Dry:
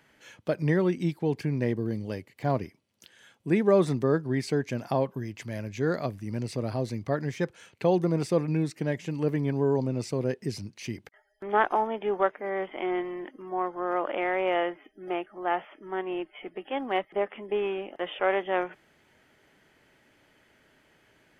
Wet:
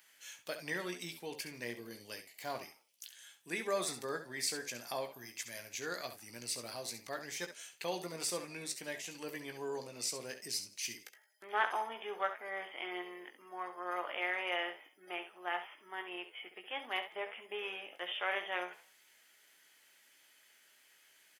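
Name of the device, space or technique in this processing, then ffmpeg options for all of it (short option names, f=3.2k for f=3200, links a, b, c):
slapback doubling: -filter_complex "[0:a]asplit=3[a][b][c];[b]adelay=17,volume=-8dB[d];[c]adelay=67,volume=-10dB[e];[a][d][e]amix=inputs=3:normalize=0,aderivative,asettb=1/sr,asplit=3[f][g][h];[f]atrim=end=3.684[i];[g]atrim=start=3.68:end=5.56,asetpts=PTS-STARTPTS,afade=t=in:d=0.004:c=qsin,afade=t=out:st=1.876:d=0.004:c=qsin,bandreject=f=2.9k:w=12[j];[h]atrim=start=5.556[k];[i][j]acrossfade=d=0.004:c1=hsin:c2=qsin[l];[l][k]acrossfade=d=0.004:c1=qsin:c2=hsin,asplit=4[m][n][o][p];[n]adelay=85,afreqshift=73,volume=-20dB[q];[o]adelay=170,afreqshift=146,volume=-28dB[r];[p]adelay=255,afreqshift=219,volume=-35.9dB[s];[m][q][r][s]amix=inputs=4:normalize=0,volume=7dB"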